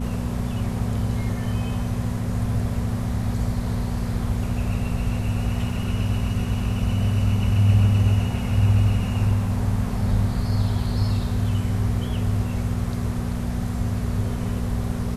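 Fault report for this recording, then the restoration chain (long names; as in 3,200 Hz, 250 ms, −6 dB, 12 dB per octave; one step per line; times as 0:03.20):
mains hum 60 Hz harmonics 4 −28 dBFS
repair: hum removal 60 Hz, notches 4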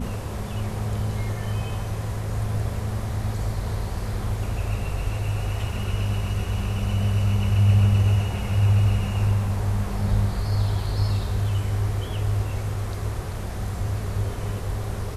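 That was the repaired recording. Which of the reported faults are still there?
none of them is left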